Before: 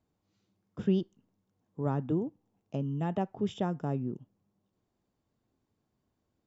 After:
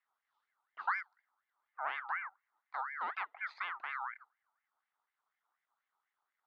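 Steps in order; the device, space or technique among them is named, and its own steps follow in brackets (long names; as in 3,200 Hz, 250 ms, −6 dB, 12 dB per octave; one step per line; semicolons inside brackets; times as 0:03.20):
voice changer toy (ring modulator whose carrier an LFO sweeps 1,500 Hz, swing 30%, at 4.1 Hz; loudspeaker in its box 500–4,200 Hz, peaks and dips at 530 Hz −4 dB, 800 Hz +5 dB, 1,200 Hz +3 dB, 1,700 Hz −5 dB, 2,500 Hz −6 dB, 3,600 Hz +4 dB)
level −4.5 dB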